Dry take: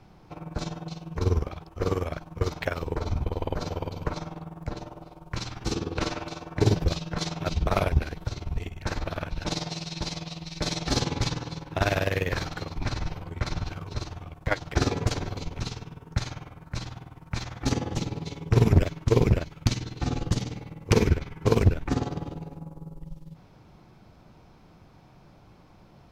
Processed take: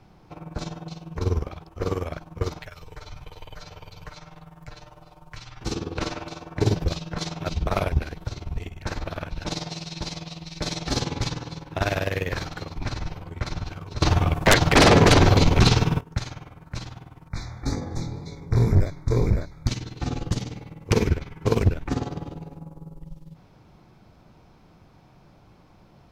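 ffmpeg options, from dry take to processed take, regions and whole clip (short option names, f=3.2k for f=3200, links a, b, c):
-filter_complex "[0:a]asettb=1/sr,asplit=3[a][b][c];[a]atrim=end=2.594[d];[b]atrim=start=2.59:end=5.61,asetpts=PTS-STARTPTS,afade=t=in:d=0.004:c=qsin,afade=t=out:st=3.016:d=0.004:c=qsin,equalizer=f=270:t=o:w=1.5:g=-10.5,acrossover=split=110|1500|3800[e][f][g][h];[e]acompressor=threshold=-41dB:ratio=3[i];[f]acompressor=threshold=-50dB:ratio=3[j];[g]acompressor=threshold=-49dB:ratio=3[k];[h]acompressor=threshold=-56dB:ratio=3[l];[i][j][k][l]amix=inputs=4:normalize=0,aecho=1:1:6.6:0.57,atrim=end_sample=133182[m];[c]atrim=start=5.606[n];[d][m]acrossfade=d=0.004:c1=hsin:c2=qsin[o];[o][n]acrossfade=d=0.004:c1=qsin:c2=hsin,asettb=1/sr,asplit=3[p][q][r];[p]atrim=end=14.024[s];[q]atrim=start=14.02:end=16.01,asetpts=PTS-STARTPTS,afade=t=in:d=0.004:c=qsin,afade=t=out:st=1.986:d=0.004:c=qsin,acrossover=split=4900[t][u];[u]acompressor=threshold=-52dB:ratio=4:attack=1:release=60[v];[t][v]amix=inputs=2:normalize=0,aeval=exprs='0.335*sin(PI/2*6.31*val(0)/0.335)':c=same[w];[r]atrim=start=16.006[x];[s][w]acrossfade=d=0.004:c1=hsin:c2=qsin[y];[y][x]acrossfade=d=0.004:c1=qsin:c2=hsin,asettb=1/sr,asplit=3[z][aa][ab];[z]atrim=end=17.284[ac];[aa]atrim=start=17.28:end=19.68,asetpts=PTS-STARTPTS,afade=t=in:d=0.004:c=qsin,afade=t=out:st=2.396:d=0.004:c=qsin,lowshelf=f=61:g=11.5,flanger=delay=19.5:depth=5.7:speed=1.9,asuperstop=centerf=2900:order=12:qfactor=2.6[ad];[ab]atrim=start=19.676[ae];[ac][ad]acrossfade=d=0.004:c1=hsin:c2=qsin[af];[af][ae]acrossfade=d=0.004:c1=qsin:c2=hsin"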